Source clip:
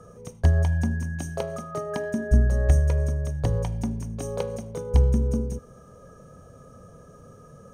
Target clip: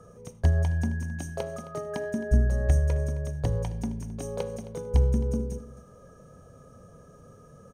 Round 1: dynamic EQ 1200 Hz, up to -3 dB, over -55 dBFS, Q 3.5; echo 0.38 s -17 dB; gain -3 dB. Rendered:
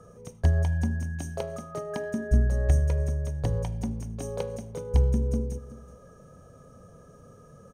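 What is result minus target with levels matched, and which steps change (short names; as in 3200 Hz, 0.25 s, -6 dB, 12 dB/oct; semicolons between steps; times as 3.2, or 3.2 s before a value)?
echo 0.115 s late
change: echo 0.265 s -17 dB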